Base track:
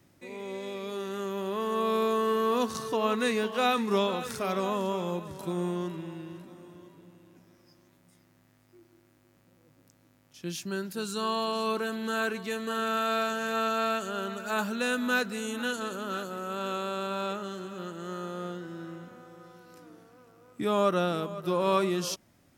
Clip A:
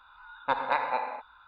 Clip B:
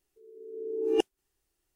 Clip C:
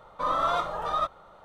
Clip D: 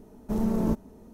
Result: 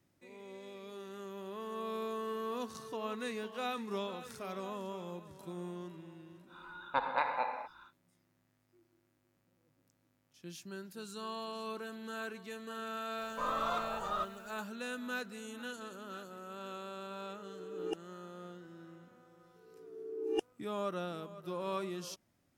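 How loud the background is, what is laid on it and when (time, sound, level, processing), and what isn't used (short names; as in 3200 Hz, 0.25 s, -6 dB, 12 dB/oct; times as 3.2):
base track -12 dB
6.46 add A -5 dB, fades 0.10 s + mismatched tape noise reduction encoder only
13.18 add C -9 dB + requantised 10-bit, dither triangular
16.93 add B -13 dB
19.39 add B -8.5 dB
not used: D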